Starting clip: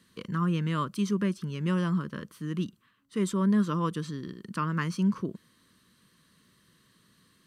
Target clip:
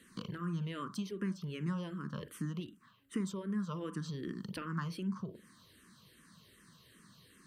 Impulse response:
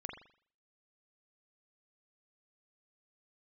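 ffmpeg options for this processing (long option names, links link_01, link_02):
-filter_complex "[0:a]acompressor=threshold=-38dB:ratio=6,asplit=2[link_01][link_02];[1:a]atrim=start_sample=2205,atrim=end_sample=3969[link_03];[link_02][link_03]afir=irnorm=-1:irlink=0,volume=-4dB[link_04];[link_01][link_04]amix=inputs=2:normalize=0,asplit=2[link_05][link_06];[link_06]afreqshift=-2.6[link_07];[link_05][link_07]amix=inputs=2:normalize=1,volume=2.5dB"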